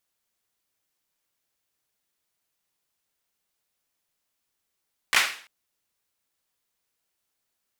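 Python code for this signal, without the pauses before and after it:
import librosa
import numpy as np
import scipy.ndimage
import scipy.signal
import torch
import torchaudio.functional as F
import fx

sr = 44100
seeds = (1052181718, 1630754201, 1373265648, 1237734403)

y = fx.drum_clap(sr, seeds[0], length_s=0.34, bursts=3, spacing_ms=16, hz=2000.0, decay_s=0.46)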